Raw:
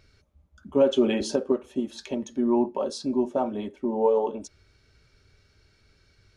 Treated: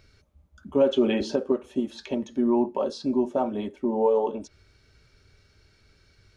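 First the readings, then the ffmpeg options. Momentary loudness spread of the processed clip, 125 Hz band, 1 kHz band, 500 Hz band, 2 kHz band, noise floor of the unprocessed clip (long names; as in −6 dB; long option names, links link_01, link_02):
8 LU, +1.0 dB, +0.5 dB, 0.0 dB, +0.5 dB, −63 dBFS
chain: -filter_complex "[0:a]acrossover=split=5000[link_01][link_02];[link_02]acompressor=threshold=-58dB:ratio=4:attack=1:release=60[link_03];[link_01][link_03]amix=inputs=2:normalize=0,asplit=2[link_04][link_05];[link_05]alimiter=limit=-17.5dB:level=0:latency=1:release=181,volume=-3dB[link_06];[link_04][link_06]amix=inputs=2:normalize=0,volume=-3dB"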